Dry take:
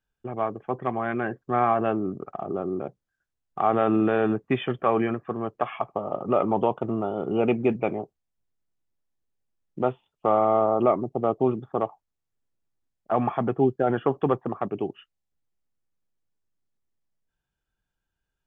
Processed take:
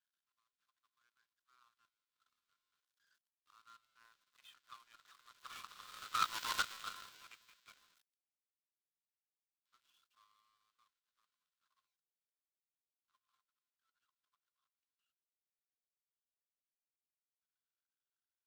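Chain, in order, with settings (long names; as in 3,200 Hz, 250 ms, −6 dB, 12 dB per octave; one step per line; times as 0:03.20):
converter with a step at zero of −24 dBFS
source passing by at 0:06.50, 10 m/s, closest 3 metres
Chebyshev high-pass with heavy ripple 1,000 Hz, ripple 9 dB
power curve on the samples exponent 2
level +8.5 dB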